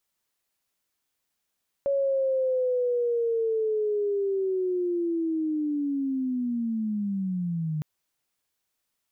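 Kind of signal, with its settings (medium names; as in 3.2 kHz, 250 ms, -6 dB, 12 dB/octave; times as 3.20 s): sweep linear 560 Hz -> 150 Hz -21.5 dBFS -> -26 dBFS 5.96 s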